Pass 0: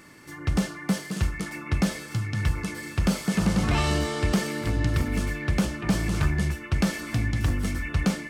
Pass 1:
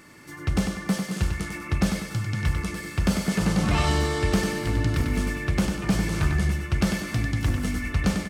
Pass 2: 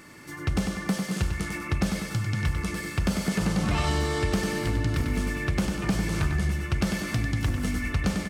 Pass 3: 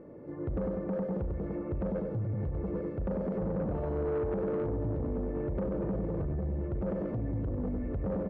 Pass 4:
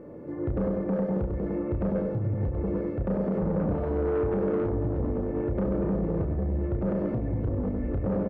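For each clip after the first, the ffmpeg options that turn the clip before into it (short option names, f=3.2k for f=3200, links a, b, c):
-af "aecho=1:1:97|194|291|388|485:0.501|0.2|0.0802|0.0321|0.0128"
-af "acompressor=threshold=-26dB:ratio=2,volume=1.5dB"
-af "alimiter=limit=-22dB:level=0:latency=1:release=45,lowpass=f=520:t=q:w=4.9,asoftclip=type=tanh:threshold=-25dB,volume=-1.5dB"
-filter_complex "[0:a]asplit=2[a][b];[b]adelay=31,volume=-6dB[c];[a][c]amix=inputs=2:normalize=0,volume=4.5dB"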